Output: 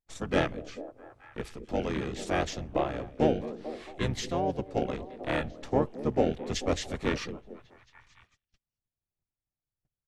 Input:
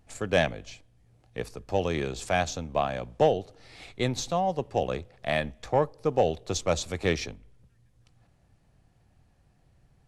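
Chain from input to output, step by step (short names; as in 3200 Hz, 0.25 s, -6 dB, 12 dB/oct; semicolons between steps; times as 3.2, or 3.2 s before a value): delay with a stepping band-pass 0.219 s, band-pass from 380 Hz, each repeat 0.7 oct, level -10 dB; gate -55 dBFS, range -30 dB; harmoniser -12 st -2 dB, -4 st -3 dB; gain -6 dB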